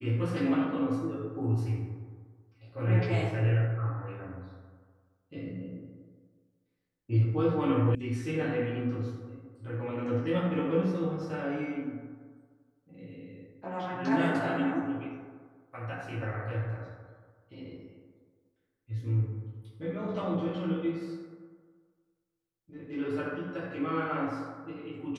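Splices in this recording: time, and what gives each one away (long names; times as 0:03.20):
0:07.95: cut off before it has died away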